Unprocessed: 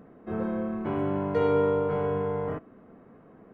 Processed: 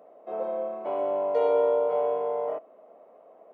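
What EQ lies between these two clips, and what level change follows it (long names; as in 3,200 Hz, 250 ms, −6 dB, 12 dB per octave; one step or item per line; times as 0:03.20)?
high-pass with resonance 610 Hz, resonance Q 4.9
parametric band 1,600 Hz −11 dB 0.57 octaves
−2.5 dB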